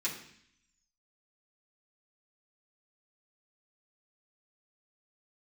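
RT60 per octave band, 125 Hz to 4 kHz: 0.90, 0.85, 0.60, 0.65, 0.80, 0.85 s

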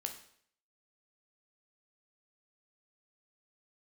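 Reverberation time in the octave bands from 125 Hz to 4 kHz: 0.65, 0.60, 0.65, 0.60, 0.60, 0.60 s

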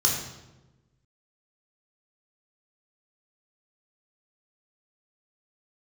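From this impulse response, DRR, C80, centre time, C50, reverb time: -2.0 dB, 6.0 dB, 44 ms, 3.5 dB, 1.1 s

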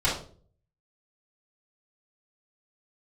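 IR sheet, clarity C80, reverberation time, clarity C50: 10.5 dB, 0.45 s, 5.0 dB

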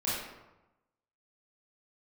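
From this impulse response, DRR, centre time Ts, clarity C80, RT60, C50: -9.5 dB, 77 ms, 2.5 dB, 1.0 s, -1.0 dB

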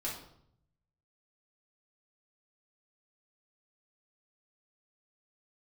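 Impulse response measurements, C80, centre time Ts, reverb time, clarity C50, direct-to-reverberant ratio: 9.0 dB, 36 ms, 0.70 s, 4.5 dB, -6.0 dB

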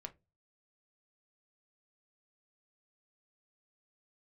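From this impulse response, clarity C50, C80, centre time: 20.0 dB, 30.0 dB, 4 ms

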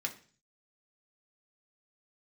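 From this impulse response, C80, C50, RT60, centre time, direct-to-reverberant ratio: 18.5 dB, 14.0 dB, 0.40 s, 9 ms, 1.5 dB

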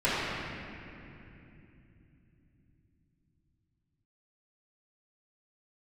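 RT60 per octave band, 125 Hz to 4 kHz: 6.2, 5.1, 3.3, 2.6, 2.9, 2.2 s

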